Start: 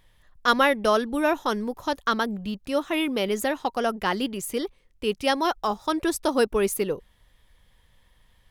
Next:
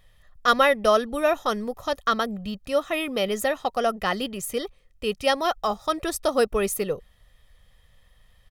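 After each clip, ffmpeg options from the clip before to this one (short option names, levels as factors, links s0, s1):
-af "aecho=1:1:1.6:0.49"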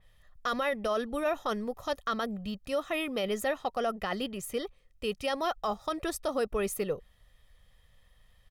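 -af "alimiter=limit=0.141:level=0:latency=1:release=15,adynamicequalizer=threshold=0.00631:dfrequency=3700:dqfactor=0.7:tfrequency=3700:tqfactor=0.7:attack=5:release=100:ratio=0.375:range=2:mode=cutabove:tftype=highshelf,volume=0.596"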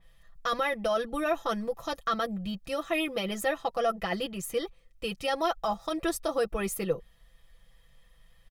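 -af "aecho=1:1:6:0.78"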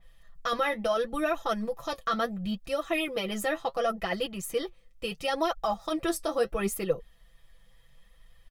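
-af "flanger=delay=1.3:depth=9.3:regen=54:speed=0.72:shape=triangular,volume=1.68"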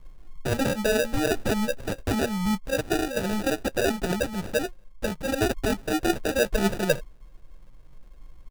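-af "lowshelf=f=230:g=8.5,acrusher=samples=41:mix=1:aa=0.000001,volume=1.33"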